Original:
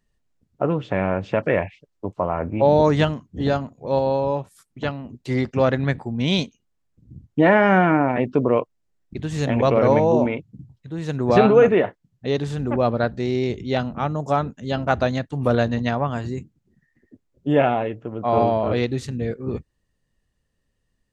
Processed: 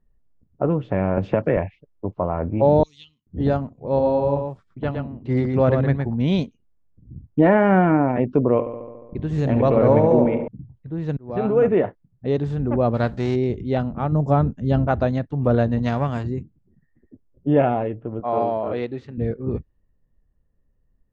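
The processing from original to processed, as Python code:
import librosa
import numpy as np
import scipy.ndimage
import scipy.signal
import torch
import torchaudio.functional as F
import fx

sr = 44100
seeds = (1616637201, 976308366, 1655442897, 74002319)

y = fx.band_squash(x, sr, depth_pct=70, at=(1.17, 1.57))
y = fx.cheby2_highpass(y, sr, hz=1700.0, order=4, stop_db=40, at=(2.83, 3.27))
y = fx.echo_single(y, sr, ms=115, db=-5.0, at=(3.79, 6.17))
y = fx.echo_filtered(y, sr, ms=71, feedback_pct=73, hz=4700.0, wet_db=-11, at=(8.52, 10.48))
y = fx.envelope_flatten(y, sr, power=0.6, at=(12.93, 13.34), fade=0.02)
y = fx.low_shelf(y, sr, hz=260.0, db=8.5, at=(14.12, 14.87))
y = fx.envelope_flatten(y, sr, power=0.6, at=(15.82, 16.22), fade=0.02)
y = fx.highpass(y, sr, hz=500.0, slope=6, at=(18.2, 19.18))
y = fx.edit(y, sr, fx.fade_in_span(start_s=11.17, length_s=0.69), tone=tone)
y = fx.tilt_eq(y, sr, slope=-4.5)
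y = fx.env_lowpass(y, sr, base_hz=1800.0, full_db=-9.0)
y = fx.low_shelf(y, sr, hz=250.0, db=-11.0)
y = y * 10.0 ** (-2.0 / 20.0)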